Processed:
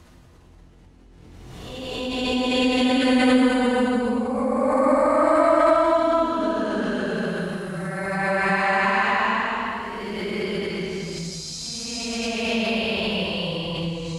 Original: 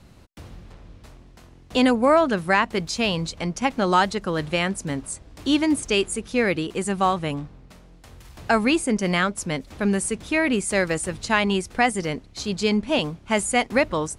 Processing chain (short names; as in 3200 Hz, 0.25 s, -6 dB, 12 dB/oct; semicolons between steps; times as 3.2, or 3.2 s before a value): Paulstretch 8×, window 0.25 s, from 1.45; backwards sustainer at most 23 dB/s; gain -3 dB